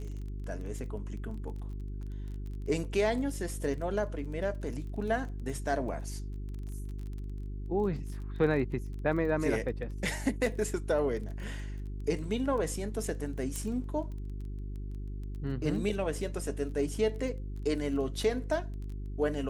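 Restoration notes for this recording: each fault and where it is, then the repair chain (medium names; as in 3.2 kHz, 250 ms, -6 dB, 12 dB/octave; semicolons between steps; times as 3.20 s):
crackle 21 per s -40 dBFS
hum 50 Hz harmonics 8 -38 dBFS
13.56 s: pop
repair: de-click; de-hum 50 Hz, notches 8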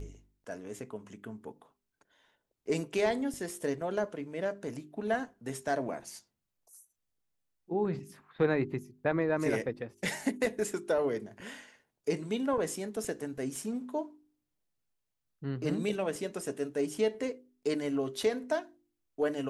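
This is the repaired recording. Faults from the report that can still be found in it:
13.56 s: pop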